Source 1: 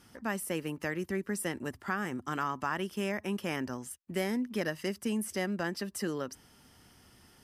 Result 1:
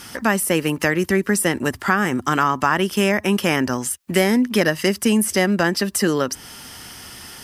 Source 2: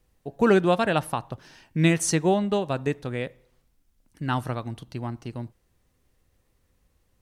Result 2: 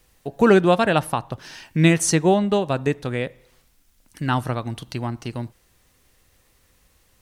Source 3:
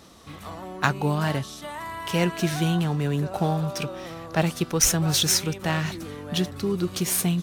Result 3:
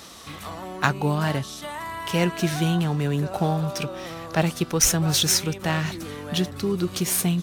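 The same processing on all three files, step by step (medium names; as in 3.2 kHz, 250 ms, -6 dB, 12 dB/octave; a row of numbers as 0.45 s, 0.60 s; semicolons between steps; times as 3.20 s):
tape noise reduction on one side only encoder only; peak normalisation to -2 dBFS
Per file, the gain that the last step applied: +15.0 dB, +4.5 dB, +1.0 dB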